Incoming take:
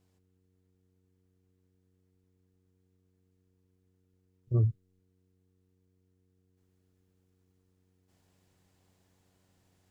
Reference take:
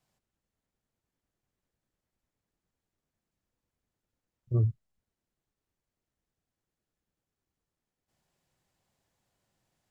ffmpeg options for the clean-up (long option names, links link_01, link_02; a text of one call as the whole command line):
ffmpeg -i in.wav -af "bandreject=frequency=92.4:width_type=h:width=4,bandreject=frequency=184.8:width_type=h:width=4,bandreject=frequency=277.2:width_type=h:width=4,bandreject=frequency=369.6:width_type=h:width=4,bandreject=frequency=462:width_type=h:width=4,asetnsamples=nb_out_samples=441:pad=0,asendcmd='6.57 volume volume -5.5dB',volume=0dB" out.wav